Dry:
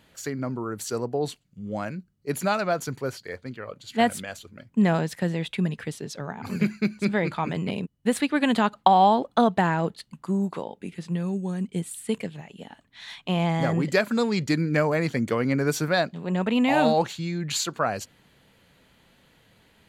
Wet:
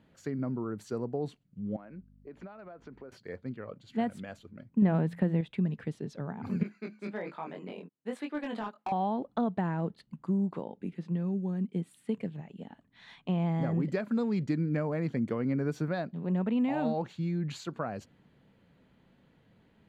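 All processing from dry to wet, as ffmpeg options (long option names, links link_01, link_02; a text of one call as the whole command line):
ffmpeg -i in.wav -filter_complex "[0:a]asettb=1/sr,asplit=3[link_01][link_02][link_03];[link_01]atrim=end=1.764[link_04];[link_02]atrim=start=1.76:end=3.12,asetpts=PTS-STARTPTS,afade=type=in:duration=0.004:curve=qsin,afade=type=out:start_time=1.356:duration=0.004:curve=qsin,highpass=270,lowpass=2700,aeval=exprs='val(0)+0.002*(sin(2*PI*50*n/s)+sin(2*PI*2*50*n/s)/2+sin(2*PI*3*50*n/s)/3+sin(2*PI*4*50*n/s)/4+sin(2*PI*5*50*n/s)/5)':channel_layout=same,acompressor=threshold=-39dB:ratio=6:attack=3.2:release=140:knee=1:detection=peak[link_05];[link_03]atrim=start=3.116[link_06];[link_04][link_05]acrossfade=duration=0.004:curve1=hsin:curve2=qsin[link_07];[link_07][link_06]acrossfade=duration=0.004:curve1=qsin:curve2=hsin,asettb=1/sr,asplit=3[link_08][link_09][link_10];[link_08]atrim=end=4.824[link_11];[link_09]atrim=start=4.82:end=5.41,asetpts=PTS-STARTPTS,afade=type=in:duration=0.004:curve=qsin,afade=type=out:start_time=0.586:duration=0.004:curve=qsin,equalizer=frequency=5700:width_type=o:width=0.91:gain=-11,acontrast=85,bandreject=frequency=57.22:width_type=h:width=4,bandreject=frequency=114.44:width_type=h:width=4,bandreject=frequency=171.66:width_type=h:width=4[link_12];[link_10]atrim=start=5.406[link_13];[link_11][link_12]acrossfade=duration=0.004:curve1=hsin:curve2=qsin[link_14];[link_14][link_13]acrossfade=duration=0.004:curve1=qsin:curve2=hsin,asettb=1/sr,asplit=3[link_15][link_16][link_17];[link_15]atrim=end=6.634[link_18];[link_16]atrim=start=6.63:end=8.92,asetpts=PTS-STARTPTS,afade=type=in:duration=0.004:curve=qsin,afade=type=out:start_time=2.286:duration=0.004:curve=qsin,highpass=410,flanger=delay=20:depth=3.6:speed=1.2,asoftclip=type=hard:threshold=-21dB[link_19];[link_17]atrim=start=8.916[link_20];[link_18][link_19]acrossfade=duration=0.004:curve1=hsin:curve2=qsin[link_21];[link_21][link_20]acrossfade=duration=0.004:curve1=qsin:curve2=hsin,asettb=1/sr,asplit=3[link_22][link_23][link_24];[link_22]atrim=end=10.934[link_25];[link_23]atrim=start=10.93:end=12.16,asetpts=PTS-STARTPTS,afade=type=in:duration=0.004:curve=qsin,afade=type=out:start_time=1.226:duration=0.004:curve=qsin,highpass=160,equalizer=frequency=8100:width=2.1:gain=-4.5[link_26];[link_24]atrim=start=12.156[link_27];[link_25][link_26]acrossfade=duration=0.004:curve1=hsin:curve2=qsin[link_28];[link_28][link_27]acrossfade=duration=0.004:curve1=qsin:curve2=hsin,acompressor=threshold=-27dB:ratio=2,lowpass=frequency=1600:poles=1,equalizer=frequency=200:width_type=o:width=2:gain=7,volume=-7dB" out.wav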